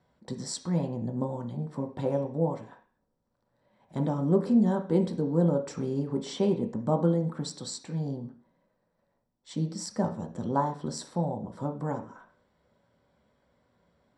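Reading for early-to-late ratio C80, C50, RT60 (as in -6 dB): 16.0 dB, 11.0 dB, 0.45 s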